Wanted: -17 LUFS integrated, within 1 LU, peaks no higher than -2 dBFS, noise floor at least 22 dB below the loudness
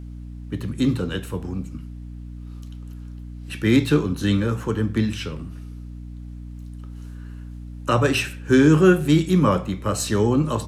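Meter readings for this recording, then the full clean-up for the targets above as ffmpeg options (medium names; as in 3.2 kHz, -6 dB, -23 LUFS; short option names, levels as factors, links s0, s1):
hum 60 Hz; highest harmonic 300 Hz; hum level -33 dBFS; loudness -21.0 LUFS; peak level -3.0 dBFS; loudness target -17.0 LUFS
-> -af "bandreject=f=60:t=h:w=4,bandreject=f=120:t=h:w=4,bandreject=f=180:t=h:w=4,bandreject=f=240:t=h:w=4,bandreject=f=300:t=h:w=4"
-af "volume=1.58,alimiter=limit=0.794:level=0:latency=1"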